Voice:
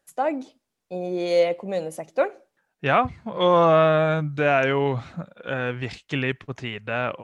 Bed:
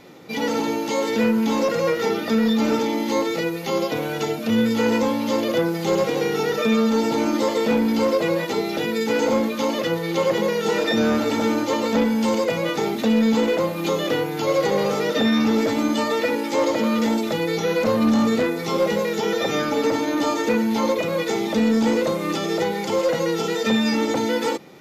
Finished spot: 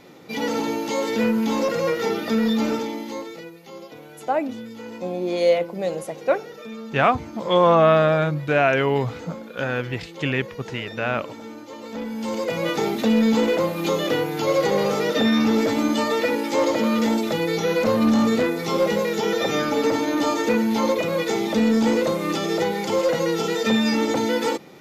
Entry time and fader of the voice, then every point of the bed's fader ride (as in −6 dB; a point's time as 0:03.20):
4.10 s, +1.5 dB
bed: 0:02.60 −1.5 dB
0:03.60 −17 dB
0:11.69 −17 dB
0:12.68 0 dB